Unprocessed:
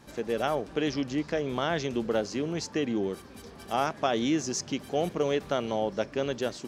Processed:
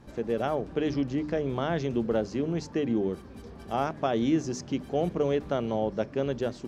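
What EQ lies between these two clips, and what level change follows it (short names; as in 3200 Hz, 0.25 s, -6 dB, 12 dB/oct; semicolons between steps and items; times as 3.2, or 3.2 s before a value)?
tilt -2.5 dB/oct; notches 50/100/150/200/250/300 Hz; -2.0 dB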